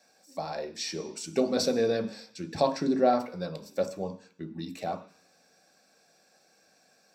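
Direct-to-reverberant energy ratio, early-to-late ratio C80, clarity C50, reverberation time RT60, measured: 5.0 dB, 16.0 dB, 13.0 dB, 0.50 s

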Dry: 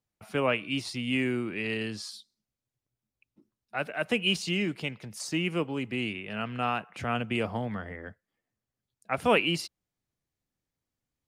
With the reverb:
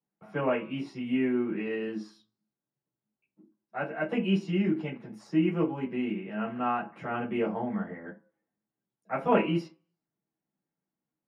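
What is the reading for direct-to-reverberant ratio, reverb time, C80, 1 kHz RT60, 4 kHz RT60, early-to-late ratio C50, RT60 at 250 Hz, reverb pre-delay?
−7.5 dB, 0.40 s, 17.5 dB, 0.40 s, 0.20 s, 11.5 dB, 0.30 s, 7 ms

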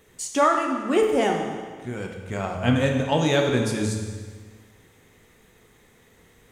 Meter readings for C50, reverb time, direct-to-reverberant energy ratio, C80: 4.0 dB, 1.6 s, 1.5 dB, 5.5 dB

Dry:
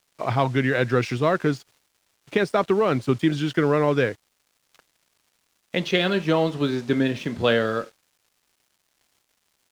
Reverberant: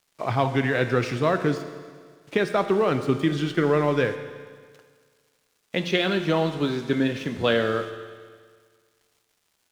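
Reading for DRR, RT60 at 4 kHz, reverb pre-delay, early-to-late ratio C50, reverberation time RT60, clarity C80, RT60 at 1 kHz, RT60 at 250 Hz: 8.0 dB, 1.7 s, 11 ms, 9.5 dB, 1.7 s, 10.5 dB, 1.7 s, 1.7 s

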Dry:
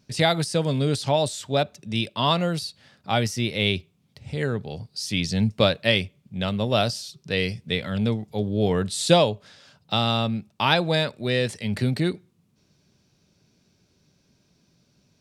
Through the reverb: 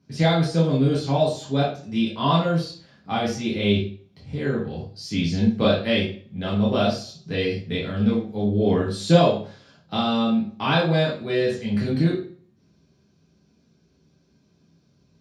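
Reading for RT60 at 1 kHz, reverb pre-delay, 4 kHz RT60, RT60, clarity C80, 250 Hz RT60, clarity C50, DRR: 0.45 s, 3 ms, 0.40 s, 0.45 s, 9.5 dB, 0.50 s, 4.5 dB, −6.0 dB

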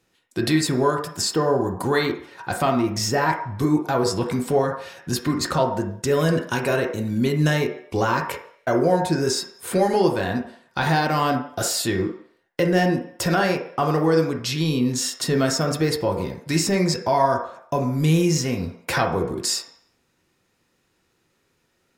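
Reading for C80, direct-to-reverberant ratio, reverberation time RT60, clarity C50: 10.5 dB, 1.5 dB, 0.60 s, 7.0 dB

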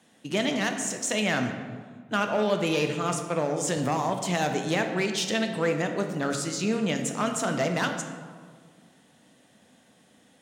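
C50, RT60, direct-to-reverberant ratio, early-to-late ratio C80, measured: 6.5 dB, 1.7 s, 4.5 dB, 8.0 dB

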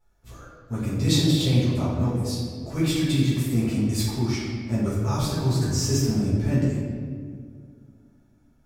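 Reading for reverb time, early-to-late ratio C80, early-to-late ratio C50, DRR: 2.0 s, 1.0 dB, −1.0 dB, −10.5 dB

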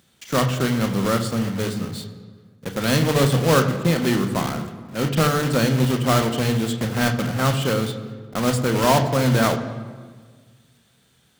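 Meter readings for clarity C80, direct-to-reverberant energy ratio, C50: 11.0 dB, 5.5 dB, 9.5 dB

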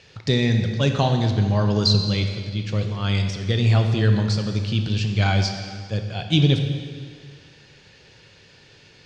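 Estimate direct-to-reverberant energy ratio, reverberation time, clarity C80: 4.5 dB, 1.9 s, 7.5 dB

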